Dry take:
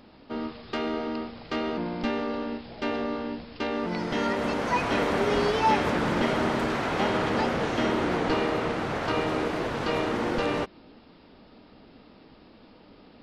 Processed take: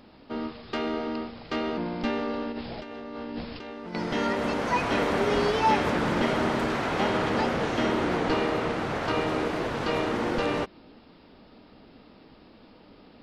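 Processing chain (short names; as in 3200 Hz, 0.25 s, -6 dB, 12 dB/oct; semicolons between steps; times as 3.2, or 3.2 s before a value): 2.52–3.95 negative-ratio compressor -37 dBFS, ratio -1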